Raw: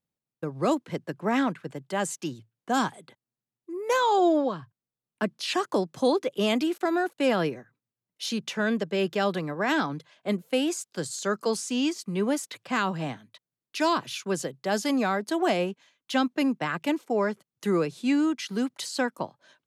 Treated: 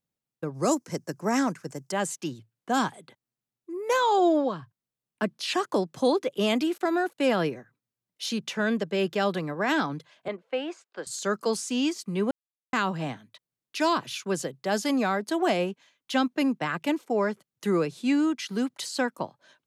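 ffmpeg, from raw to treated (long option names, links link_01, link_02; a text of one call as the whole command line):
ffmpeg -i in.wav -filter_complex "[0:a]asettb=1/sr,asplit=3[link_01][link_02][link_03];[link_01]atrim=end=0.544[link_04];[link_02]atrim=start=0.54:end=1.92,asetpts=PTS-STARTPTS,afade=type=in:duration=0.004:curve=qsin,afade=type=out:start_time=1.376:duration=0.004:curve=qsin,highshelf=frequency=4500:width_type=q:width=3:gain=8.5[link_05];[link_03]atrim=start=1.916[link_06];[link_04][link_05]acrossfade=duration=0.004:curve1=hsin:curve2=qsin[link_07];[link_07][link_06]acrossfade=duration=0.004:curve1=qsin:curve2=hsin,asettb=1/sr,asplit=3[link_08][link_09][link_10];[link_08]atrim=end=10.284[link_11];[link_09]atrim=start=10.28:end=11.07,asetpts=PTS-STARTPTS,afade=type=in:duration=0.004:curve=qsin,afade=type=out:start_time=0.786:duration=0.004:curve=qsin,highpass=480,lowpass=2200[link_12];[link_10]atrim=start=11.066[link_13];[link_11][link_12]acrossfade=duration=0.004:curve1=hsin:curve2=qsin[link_14];[link_14][link_13]acrossfade=duration=0.004:curve1=qsin:curve2=hsin,asplit=3[link_15][link_16][link_17];[link_15]atrim=end=12.31,asetpts=PTS-STARTPTS,afade=type=out:start_time=12.306:duration=0.004:curve=hsin[link_18];[link_16]atrim=start=12.31:end=12.73,asetpts=PTS-STARTPTS,volume=0[link_19];[link_17]atrim=start=12.73,asetpts=PTS-STARTPTS,afade=type=in:duration=0.004:curve=hsin[link_20];[link_18][link_19][link_20]concat=n=3:v=0:a=1" out.wav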